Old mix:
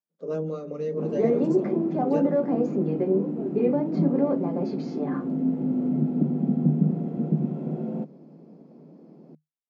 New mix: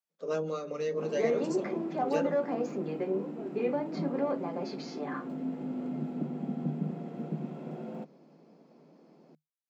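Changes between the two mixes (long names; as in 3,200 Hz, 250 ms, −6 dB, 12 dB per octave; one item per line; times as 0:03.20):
background −4.0 dB
master: add tilt shelving filter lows −9.5 dB, about 640 Hz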